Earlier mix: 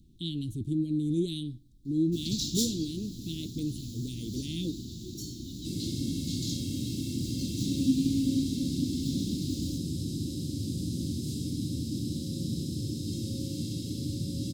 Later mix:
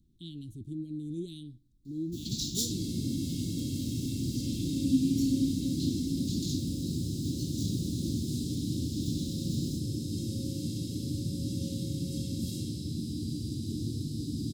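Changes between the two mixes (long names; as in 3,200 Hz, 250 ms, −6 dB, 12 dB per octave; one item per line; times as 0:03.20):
speech −8.5 dB
second sound: entry −2.95 s
master: add parametric band 2,300 Hz −3 dB 2.6 octaves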